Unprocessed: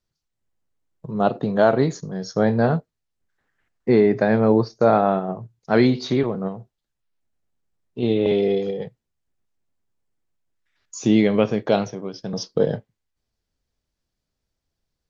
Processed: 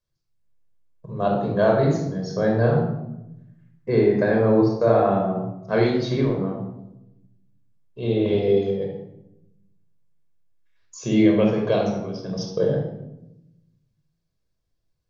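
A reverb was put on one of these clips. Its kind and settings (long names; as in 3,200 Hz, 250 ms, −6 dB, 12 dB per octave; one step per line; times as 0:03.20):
rectangular room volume 2,900 cubic metres, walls furnished, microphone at 5.4 metres
level −7 dB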